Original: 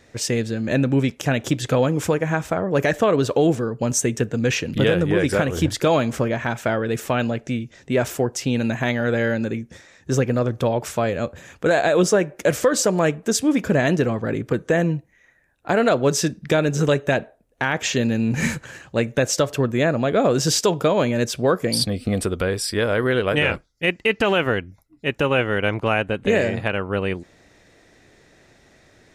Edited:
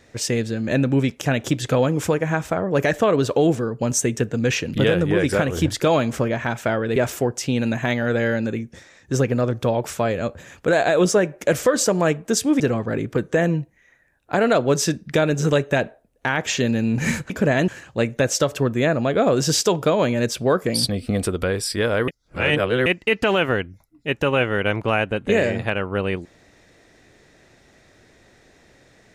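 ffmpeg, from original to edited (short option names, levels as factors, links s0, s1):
-filter_complex "[0:a]asplit=7[s0][s1][s2][s3][s4][s5][s6];[s0]atrim=end=6.962[s7];[s1]atrim=start=7.938:end=13.582[s8];[s2]atrim=start=13.958:end=18.662[s9];[s3]atrim=start=13.578:end=13.962[s10];[s4]atrim=start=18.658:end=23.062[s11];[s5]atrim=start=23.058:end=23.842,asetpts=PTS-STARTPTS,areverse[s12];[s6]atrim=start=23.838[s13];[s7][s8]acrossfade=d=0.004:c1=hsin:c2=hsin[s14];[s14][s9]acrossfade=d=0.004:c1=hsin:c2=hsin[s15];[s15][s10]acrossfade=d=0.004:c1=hsin:c2=hsin[s16];[s16][s11]acrossfade=d=0.004:c1=hsin:c2=hsin[s17];[s17][s12]acrossfade=d=0.004:c1=hsin:c2=hsin[s18];[s18][s13]acrossfade=d=0.004:c1=hsin:c2=hsin"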